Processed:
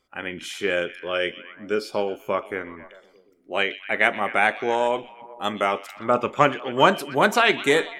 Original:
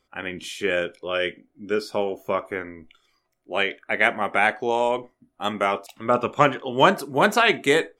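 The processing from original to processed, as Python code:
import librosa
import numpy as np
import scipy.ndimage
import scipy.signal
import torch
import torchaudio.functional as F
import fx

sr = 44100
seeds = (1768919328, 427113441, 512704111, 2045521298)

y = fx.low_shelf(x, sr, hz=130.0, db=-3.5)
y = fx.echo_stepped(y, sr, ms=124, hz=3400.0, octaves=-0.7, feedback_pct=70, wet_db=-11.5)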